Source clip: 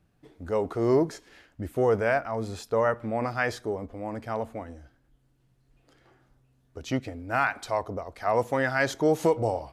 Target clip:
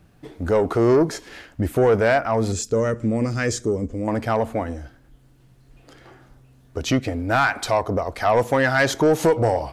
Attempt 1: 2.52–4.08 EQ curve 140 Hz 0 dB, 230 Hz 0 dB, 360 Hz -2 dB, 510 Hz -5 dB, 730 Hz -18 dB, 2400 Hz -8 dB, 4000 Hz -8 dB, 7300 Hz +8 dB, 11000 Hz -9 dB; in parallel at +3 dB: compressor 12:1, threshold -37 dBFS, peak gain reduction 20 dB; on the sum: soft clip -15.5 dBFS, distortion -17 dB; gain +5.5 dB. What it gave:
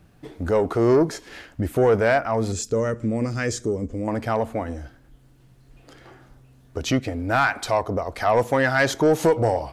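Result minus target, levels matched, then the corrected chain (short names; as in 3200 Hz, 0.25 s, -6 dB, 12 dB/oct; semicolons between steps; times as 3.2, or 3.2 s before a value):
compressor: peak gain reduction +6.5 dB
2.52–4.08 EQ curve 140 Hz 0 dB, 230 Hz 0 dB, 360 Hz -2 dB, 510 Hz -5 dB, 730 Hz -18 dB, 2400 Hz -8 dB, 4000 Hz -8 dB, 7300 Hz +8 dB, 11000 Hz -9 dB; in parallel at +3 dB: compressor 12:1, threshold -30 dBFS, peak gain reduction 13.5 dB; on the sum: soft clip -15.5 dBFS, distortion -15 dB; gain +5.5 dB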